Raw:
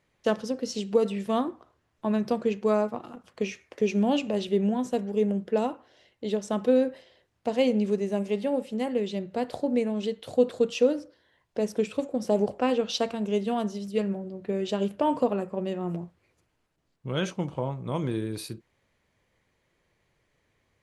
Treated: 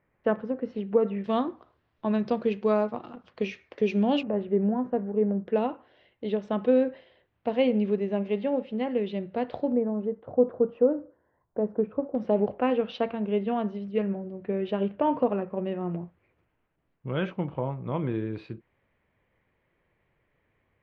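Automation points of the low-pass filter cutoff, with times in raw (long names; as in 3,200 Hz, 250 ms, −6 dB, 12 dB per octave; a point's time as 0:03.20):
low-pass filter 24 dB per octave
2,100 Hz
from 0:01.24 4,300 Hz
from 0:04.23 1,700 Hz
from 0:05.48 3,200 Hz
from 0:09.72 1,300 Hz
from 0:12.15 2,700 Hz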